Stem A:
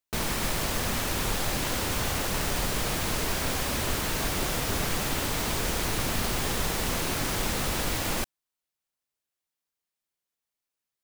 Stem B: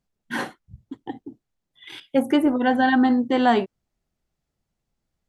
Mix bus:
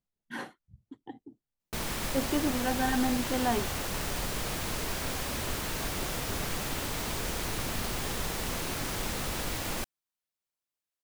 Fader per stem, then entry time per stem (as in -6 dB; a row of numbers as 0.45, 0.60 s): -5.0, -11.0 dB; 1.60, 0.00 s